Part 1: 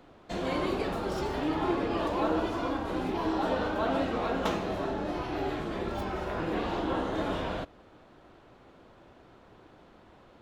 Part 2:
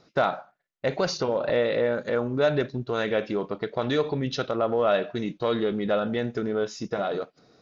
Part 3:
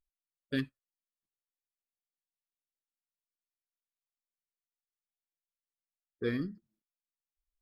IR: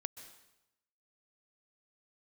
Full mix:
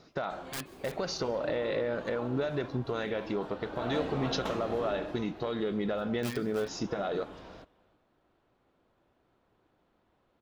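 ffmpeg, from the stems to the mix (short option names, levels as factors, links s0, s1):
-filter_complex "[0:a]volume=0.501,afade=t=in:st=3.6:d=0.35:silence=0.354813,afade=t=out:st=4.91:d=0.43:silence=0.316228,asplit=2[s0][s1];[s1]volume=0.0891[s2];[1:a]acompressor=threshold=0.0501:ratio=6,volume=1,asplit=2[s3][s4];[s4]volume=0.188[s5];[2:a]tiltshelf=f=880:g=-5.5,aeval=exprs='(mod(26.6*val(0)+1,2)-1)/26.6':c=same,volume=0.562,asplit=4[s6][s7][s8][s9];[s7]volume=0.473[s10];[s8]volume=0.376[s11];[s9]apad=whole_len=459390[s12];[s0][s12]sidechaincompress=threshold=0.00501:ratio=8:attack=16:release=578[s13];[s3][s6]amix=inputs=2:normalize=0,alimiter=limit=0.0631:level=0:latency=1:release=369,volume=1[s14];[3:a]atrim=start_sample=2205[s15];[s5][s10]amix=inputs=2:normalize=0[s16];[s16][s15]afir=irnorm=-1:irlink=0[s17];[s2][s11]amix=inputs=2:normalize=0,aecho=0:1:311:1[s18];[s13][s14][s17][s18]amix=inputs=4:normalize=0"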